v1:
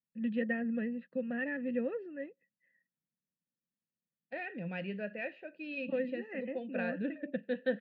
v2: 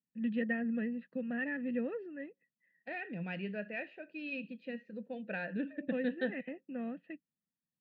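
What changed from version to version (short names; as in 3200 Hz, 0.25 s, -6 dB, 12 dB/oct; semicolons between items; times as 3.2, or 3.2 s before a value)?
second voice: entry -1.45 s; master: add bell 540 Hz -6.5 dB 0.23 oct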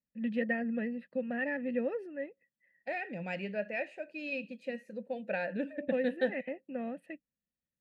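master: remove speaker cabinet 120–3700 Hz, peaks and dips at 160 Hz +4 dB, 570 Hz -10 dB, 830 Hz -8 dB, 2200 Hz -7 dB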